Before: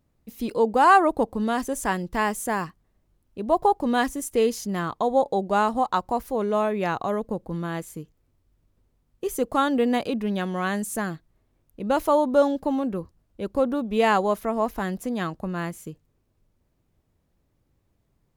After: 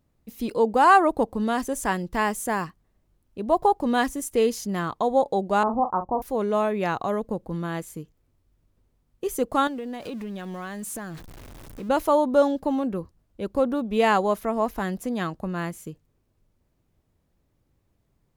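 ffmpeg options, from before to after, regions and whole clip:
-filter_complex "[0:a]asettb=1/sr,asplit=3[s0][s1][s2];[s0]atrim=end=5.634[s3];[s1]atrim=start=5.63:end=6.22,asetpts=PTS-STARTPTS,afade=t=in:d=0.004:c=qsin,afade=t=out:st=0.586:d=0.004:c=qsin,lowpass=f=1100:w=0.5412,lowpass=f=1100:w=1.3066,asplit=2[s4][s5];[s5]adelay=40,volume=0.355[s6];[s4][s6]amix=inputs=2:normalize=0,atrim=end_sample=26019[s7];[s2]atrim=start=6.216[s8];[s3][s7]acrossfade=d=0.004:c1=hsin:c2=qsin[s9];[s9][s8]acrossfade=d=0.004:c1=qsin:c2=hsin,asettb=1/sr,asplit=3[s10][s11][s12];[s10]atrim=end=9.674[s13];[s11]atrim=start=9.67:end=11.89,asetpts=PTS-STARTPTS,afade=t=in:d=0.004:c=qsin,afade=t=out:st=2.216:d=0.004:c=qsin,aeval=exprs='val(0)+0.5*0.0133*sgn(val(0))':c=same,acompressor=threshold=0.0282:ratio=5:attack=3.2:release=140:knee=1:detection=peak[s14];[s12]atrim=start=11.886[s15];[s13][s14]acrossfade=d=0.004:c1=hsin:c2=qsin[s16];[s16][s15]acrossfade=d=0.004:c1=qsin:c2=hsin"

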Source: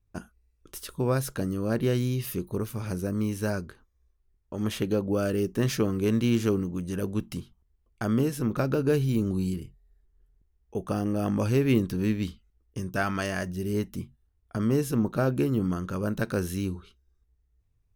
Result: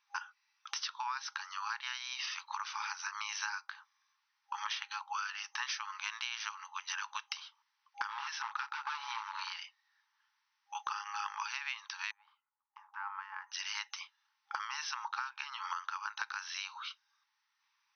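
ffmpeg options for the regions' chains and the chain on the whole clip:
-filter_complex "[0:a]asettb=1/sr,asplit=3[s0][s1][s2];[s0]atrim=end=8.084[s3];[s1]atrim=start=8.08:end=9.56,asetpts=PTS-STARTPTS,afade=t=in:d=0.004:c=qsin,afade=t=out:st=1.476:d=0.004:c=qsin,highshelf=f=5000:g=-8.5,aeval=exprs='val(0)+0.0251*sin(2*PI*580*n/s)':c=same,asoftclip=type=hard:threshold=0.0841[s4];[s2]atrim=start=9.556[s5];[s3][s4]acrossfade=d=0.004:c1=hsin:c2=qsin[s6];[s6][s5]acrossfade=d=0.004:c1=qsin:c2=hsin,asettb=1/sr,asplit=3[s7][s8][s9];[s7]atrim=end=12.114[s10];[s8]atrim=start=12.11:end=13.52,asetpts=PTS-STARTPTS,afade=t=in:d=0.004:c=qsin,afade=t=out:st=1.406:d=0.004:c=qsin,aeval=exprs='if(lt(val(0),0),0.708*val(0),val(0))':c=same,asuperpass=centerf=420:order=4:qfactor=0.71,acompressor=threshold=0.00891:ratio=4:attack=3.2:release=140:knee=1:detection=peak[s11];[s9]atrim=start=13.516[s12];[s10][s11]acrossfade=d=0.004:c1=hsin:c2=qsin[s13];[s13][s12]acrossfade=d=0.004:c1=qsin:c2=hsin,afftfilt=real='re*between(b*sr/4096,810,6200)':imag='im*between(b*sr/4096,810,6200)':win_size=4096:overlap=0.75,acompressor=threshold=0.00282:ratio=10,volume=5.96"

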